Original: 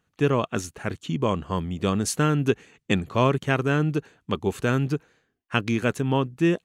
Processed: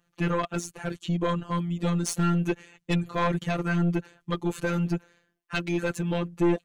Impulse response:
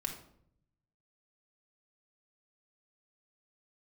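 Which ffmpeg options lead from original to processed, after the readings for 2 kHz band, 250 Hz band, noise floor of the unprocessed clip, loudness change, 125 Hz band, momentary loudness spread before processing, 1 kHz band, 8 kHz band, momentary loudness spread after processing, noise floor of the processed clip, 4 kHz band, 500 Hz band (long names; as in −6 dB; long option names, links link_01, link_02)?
−4.0 dB, −2.0 dB, −76 dBFS, −3.0 dB, −2.5 dB, 8 LU, −3.0 dB, −3.0 dB, 7 LU, −75 dBFS, −4.5 dB, −5.0 dB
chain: -af "afftfilt=real='hypot(re,im)*cos(PI*b)':imag='0':win_size=1024:overlap=0.75,aeval=exprs='(tanh(12.6*val(0)+0.2)-tanh(0.2))/12.6':channel_layout=same,volume=4.5dB"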